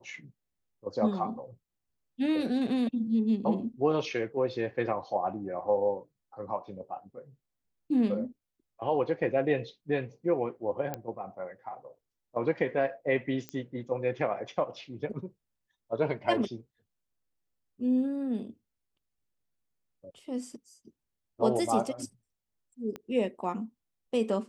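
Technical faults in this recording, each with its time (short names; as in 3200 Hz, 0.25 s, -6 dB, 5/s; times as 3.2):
10.94 pop -19 dBFS
13.49 pop -22 dBFS
22.96 pop -25 dBFS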